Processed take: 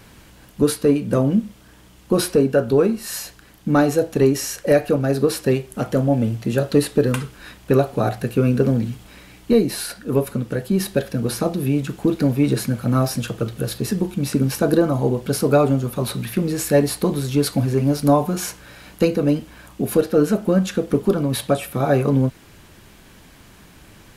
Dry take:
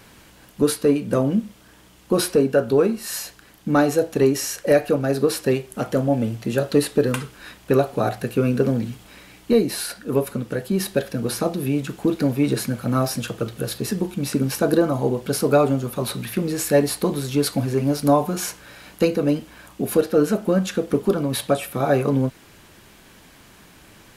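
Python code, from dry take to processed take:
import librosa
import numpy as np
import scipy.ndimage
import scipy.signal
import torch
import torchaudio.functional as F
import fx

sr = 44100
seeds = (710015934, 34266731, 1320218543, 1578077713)

y = fx.low_shelf(x, sr, hz=170.0, db=7.0)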